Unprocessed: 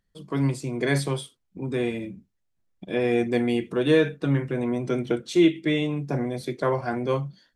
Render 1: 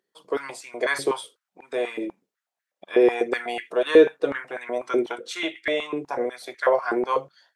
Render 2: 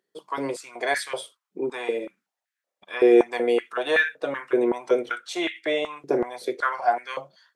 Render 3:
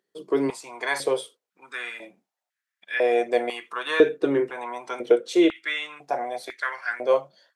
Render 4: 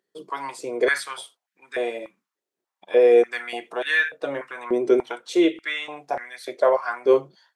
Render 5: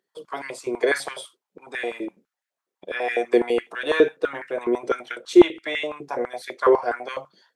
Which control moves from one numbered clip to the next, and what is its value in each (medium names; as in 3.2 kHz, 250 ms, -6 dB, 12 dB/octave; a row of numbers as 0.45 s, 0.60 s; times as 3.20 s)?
step-sequenced high-pass, rate: 8.1 Hz, 5.3 Hz, 2 Hz, 3.4 Hz, 12 Hz